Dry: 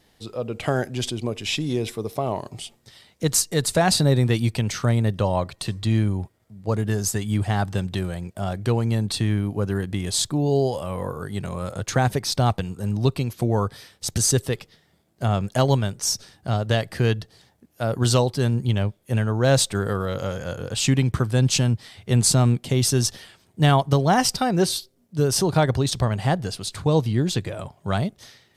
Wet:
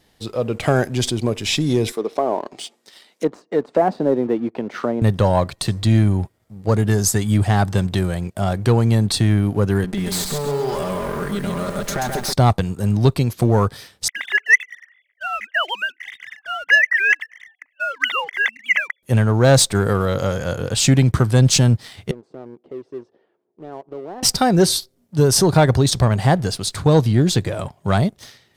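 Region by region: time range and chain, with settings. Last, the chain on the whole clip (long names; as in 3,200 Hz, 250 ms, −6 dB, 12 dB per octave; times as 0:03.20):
0:01.92–0:05.02: treble cut that deepens with the level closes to 770 Hz, closed at −19 dBFS + high-pass filter 250 Hz 24 dB per octave
0:09.84–0:12.33: lower of the sound and its delayed copy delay 5 ms + downward compressor 5 to 1, threshold −27 dBFS + feedback echo at a low word length 133 ms, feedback 35%, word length 8 bits, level −4 dB
0:14.08–0:19.03: three sine waves on the formant tracks + high-pass with resonance 2,000 Hz, resonance Q 14
0:22.11–0:24.23: downward compressor 2.5 to 1, threshold −25 dBFS + four-pole ladder band-pass 440 Hz, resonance 50%
whole clip: dynamic equaliser 2,800 Hz, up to −5 dB, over −46 dBFS, Q 3.2; leveller curve on the samples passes 1; level +3 dB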